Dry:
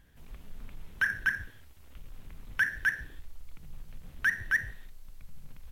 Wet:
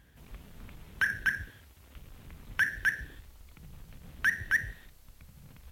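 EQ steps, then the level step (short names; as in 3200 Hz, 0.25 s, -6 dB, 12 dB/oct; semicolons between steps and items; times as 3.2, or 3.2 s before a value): HPF 41 Hz; dynamic EQ 1100 Hz, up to -6 dB, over -41 dBFS, Q 1.3; +2.5 dB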